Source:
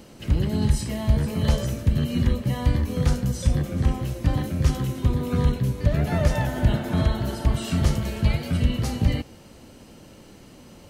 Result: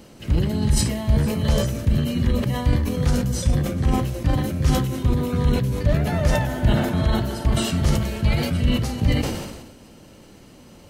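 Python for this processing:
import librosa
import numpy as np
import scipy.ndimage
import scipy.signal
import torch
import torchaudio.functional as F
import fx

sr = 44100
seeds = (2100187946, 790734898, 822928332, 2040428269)

y = fx.sustainer(x, sr, db_per_s=46.0)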